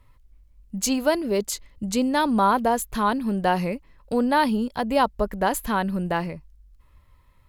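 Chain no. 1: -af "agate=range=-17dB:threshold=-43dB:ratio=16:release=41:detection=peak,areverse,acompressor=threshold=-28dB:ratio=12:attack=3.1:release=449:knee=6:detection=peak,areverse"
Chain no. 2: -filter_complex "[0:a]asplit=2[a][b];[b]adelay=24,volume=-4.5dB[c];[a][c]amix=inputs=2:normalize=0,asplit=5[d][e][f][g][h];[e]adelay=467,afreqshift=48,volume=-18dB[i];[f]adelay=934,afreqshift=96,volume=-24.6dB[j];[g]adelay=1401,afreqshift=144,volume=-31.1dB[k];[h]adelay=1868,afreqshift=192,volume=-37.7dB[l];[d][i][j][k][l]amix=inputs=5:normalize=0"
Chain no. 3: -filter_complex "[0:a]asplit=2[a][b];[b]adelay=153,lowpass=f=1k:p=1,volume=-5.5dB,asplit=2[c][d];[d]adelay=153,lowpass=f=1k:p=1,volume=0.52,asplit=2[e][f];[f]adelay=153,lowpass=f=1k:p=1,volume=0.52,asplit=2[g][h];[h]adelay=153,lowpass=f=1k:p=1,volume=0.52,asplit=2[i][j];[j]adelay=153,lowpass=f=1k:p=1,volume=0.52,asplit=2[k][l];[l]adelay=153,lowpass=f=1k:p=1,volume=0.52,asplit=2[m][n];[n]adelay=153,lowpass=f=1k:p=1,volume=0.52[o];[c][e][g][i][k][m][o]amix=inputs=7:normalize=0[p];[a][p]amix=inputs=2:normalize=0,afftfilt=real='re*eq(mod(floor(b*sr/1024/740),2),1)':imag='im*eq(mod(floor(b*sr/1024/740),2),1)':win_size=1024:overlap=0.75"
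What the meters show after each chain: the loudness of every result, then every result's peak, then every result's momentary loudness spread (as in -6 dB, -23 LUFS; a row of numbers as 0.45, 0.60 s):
-35.0, -22.5, -28.0 LUFS; -20.5, -5.5, -10.0 dBFS; 5, 10, 15 LU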